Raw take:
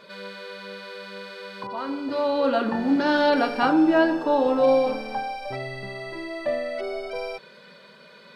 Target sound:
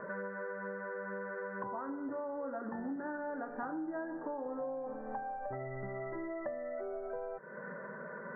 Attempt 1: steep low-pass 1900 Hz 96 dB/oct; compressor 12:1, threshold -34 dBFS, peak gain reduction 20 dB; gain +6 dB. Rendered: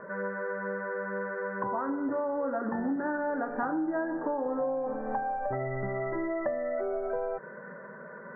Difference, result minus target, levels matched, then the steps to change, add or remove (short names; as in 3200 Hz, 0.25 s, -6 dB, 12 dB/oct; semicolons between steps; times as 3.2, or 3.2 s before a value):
compressor: peak gain reduction -8.5 dB
change: compressor 12:1, threshold -43.5 dBFS, peak gain reduction 28.5 dB